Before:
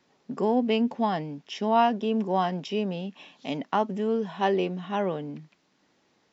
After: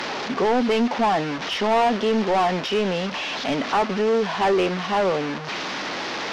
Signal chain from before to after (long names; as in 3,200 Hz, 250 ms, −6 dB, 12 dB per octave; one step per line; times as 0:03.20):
linear delta modulator 32 kbit/s, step −34.5 dBFS
mid-hump overdrive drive 23 dB, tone 2,500 Hz, clips at −11.5 dBFS